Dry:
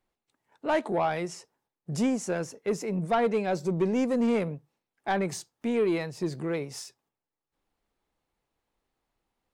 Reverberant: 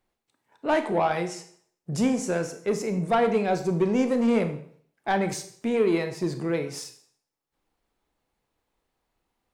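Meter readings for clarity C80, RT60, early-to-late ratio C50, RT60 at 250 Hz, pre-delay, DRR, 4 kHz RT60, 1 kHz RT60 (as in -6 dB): 14.0 dB, 0.55 s, 11.0 dB, 0.55 s, 25 ms, 7.5 dB, 0.55 s, 0.55 s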